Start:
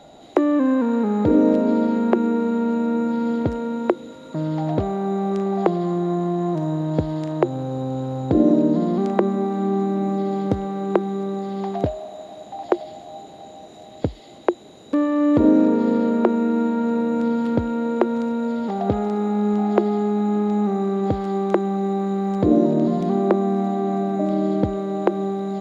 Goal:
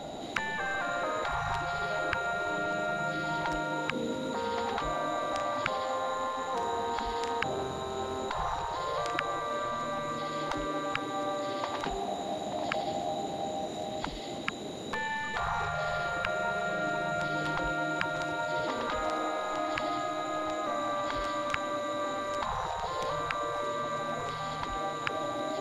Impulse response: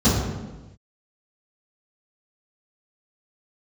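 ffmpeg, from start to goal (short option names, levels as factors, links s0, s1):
-af "acontrast=52,afftfilt=real='re*lt(hypot(re,im),0.251)':imag='im*lt(hypot(re,im),0.251)':win_size=1024:overlap=0.75"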